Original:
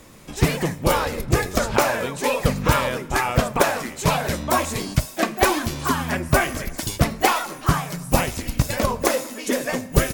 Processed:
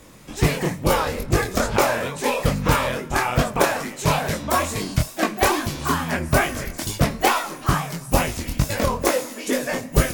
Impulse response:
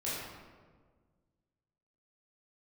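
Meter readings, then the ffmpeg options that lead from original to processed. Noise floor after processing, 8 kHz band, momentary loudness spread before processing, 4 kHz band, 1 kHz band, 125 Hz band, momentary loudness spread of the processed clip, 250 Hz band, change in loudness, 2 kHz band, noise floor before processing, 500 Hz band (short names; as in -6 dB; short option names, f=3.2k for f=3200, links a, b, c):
-38 dBFS, 0.0 dB, 5 LU, 0.0 dB, 0.0 dB, 0.0 dB, 5 LU, 0.0 dB, 0.0 dB, 0.0 dB, -38 dBFS, 0.0 dB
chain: -af "flanger=delay=19:depth=7.3:speed=2.3,volume=3dB"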